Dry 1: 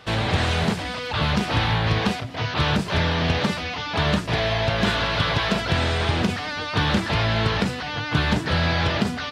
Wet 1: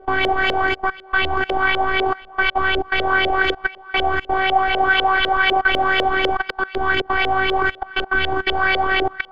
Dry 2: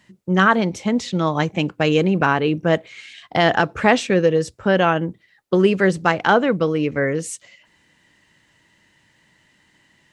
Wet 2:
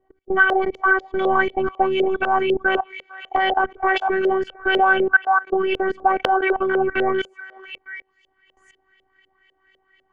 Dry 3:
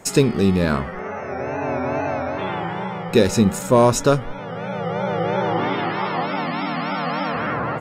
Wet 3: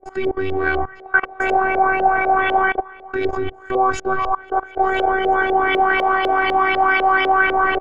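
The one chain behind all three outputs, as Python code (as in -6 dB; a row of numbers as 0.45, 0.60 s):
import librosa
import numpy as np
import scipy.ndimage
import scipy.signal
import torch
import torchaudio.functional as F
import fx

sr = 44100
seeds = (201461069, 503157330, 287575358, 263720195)

p1 = fx.ripple_eq(x, sr, per_octave=1.8, db=10)
p2 = fx.echo_stepped(p1, sr, ms=449, hz=1200.0, octaves=1.4, feedback_pct=70, wet_db=-4.0)
p3 = fx.rider(p2, sr, range_db=4, speed_s=0.5)
p4 = p2 + (p3 * librosa.db_to_amplitude(-2.0))
p5 = scipy.signal.sosfilt(scipy.signal.butter(2, 12000.0, 'lowpass', fs=sr, output='sos'), p4)
p6 = fx.robotise(p5, sr, hz=379.0)
p7 = fx.level_steps(p6, sr, step_db=22)
p8 = fx.filter_lfo_lowpass(p7, sr, shape='saw_up', hz=4.0, low_hz=500.0, high_hz=3100.0, q=3.9)
p9 = fx.high_shelf(p8, sr, hz=8500.0, db=10.5)
y = p9 * librosa.db_to_amplitude(1.0)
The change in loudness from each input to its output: +4.0, -1.0, +3.5 LU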